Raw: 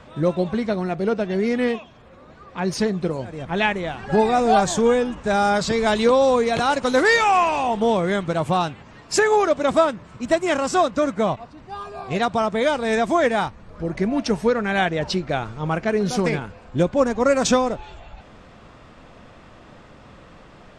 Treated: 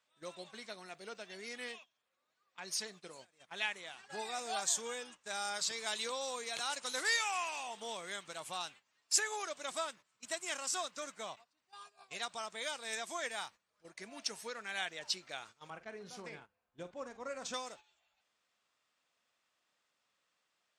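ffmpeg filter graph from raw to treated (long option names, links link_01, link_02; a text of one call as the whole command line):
ffmpeg -i in.wav -filter_complex "[0:a]asettb=1/sr,asplit=3[link_01][link_02][link_03];[link_01]atrim=end=15.704[link_04];[link_02]atrim=start=15.7:end=17.54,asetpts=PTS-STARTPTS,afade=type=in:duration=0.004:curve=qsin,afade=type=out:start_time=1.836:duration=0.004:curve=qsin,lowpass=frequency=1000:poles=1,lowshelf=frequency=110:gain=11.5,asplit=2[link_05][link_06];[link_06]adelay=45,volume=-12.5dB[link_07];[link_05][link_07]amix=inputs=2:normalize=0,atrim=end_sample=81144[link_08];[link_03]atrim=start=17.536[link_09];[link_04][link_08]acrossfade=duration=0.004:curve1=hsin:curve2=qsin[link_10];[link_10][link_09]acrossfade=duration=0.004:curve1=qsin:curve2=hsin,aderivative,agate=range=-15dB:threshold=-50dB:ratio=16:detection=peak,volume=-3.5dB" out.wav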